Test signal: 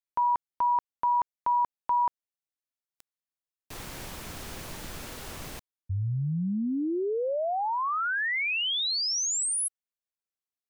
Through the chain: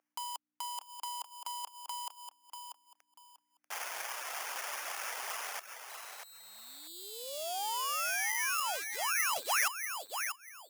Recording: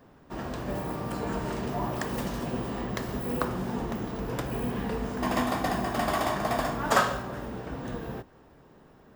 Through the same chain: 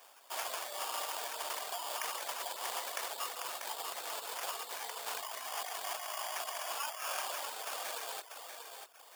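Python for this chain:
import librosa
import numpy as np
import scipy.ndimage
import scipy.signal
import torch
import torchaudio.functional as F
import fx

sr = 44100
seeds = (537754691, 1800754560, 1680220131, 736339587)

p1 = fx.peak_eq(x, sr, hz=9900.0, db=-6.5, octaves=0.75)
p2 = fx.over_compress(p1, sr, threshold_db=-34.0, ratio=-1.0)
p3 = fx.sample_hold(p2, sr, seeds[0], rate_hz=4000.0, jitter_pct=0)
p4 = p3 + fx.echo_feedback(p3, sr, ms=640, feedback_pct=24, wet_db=-7.0, dry=0)
p5 = fx.dereverb_blind(p4, sr, rt60_s=0.54)
p6 = fx.add_hum(p5, sr, base_hz=60, snr_db=14)
p7 = scipy.signal.sosfilt(scipy.signal.butter(4, 670.0, 'highpass', fs=sr, output='sos'), p6)
p8 = fx.high_shelf(p7, sr, hz=6400.0, db=11.5)
p9 = fx.doppler_dist(p8, sr, depth_ms=0.11)
y = p9 * librosa.db_to_amplitude(-1.5)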